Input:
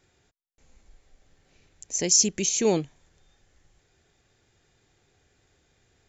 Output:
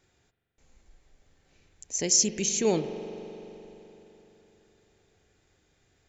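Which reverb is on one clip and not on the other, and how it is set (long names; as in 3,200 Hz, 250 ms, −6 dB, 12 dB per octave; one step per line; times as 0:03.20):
spring reverb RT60 3.7 s, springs 42 ms, chirp 55 ms, DRR 8.5 dB
level −2.5 dB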